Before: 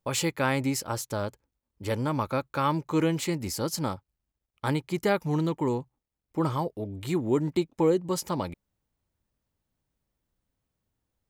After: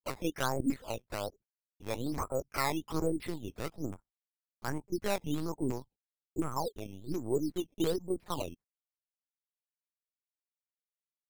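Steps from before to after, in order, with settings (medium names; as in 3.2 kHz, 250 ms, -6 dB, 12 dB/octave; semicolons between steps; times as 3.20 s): self-modulated delay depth 0.088 ms; gate -48 dBFS, range -47 dB; LFO low-pass saw down 2.8 Hz 230–2500 Hz; LPC vocoder at 8 kHz pitch kept; decimation with a swept rate 10×, swing 100% 1.2 Hz; trim -9 dB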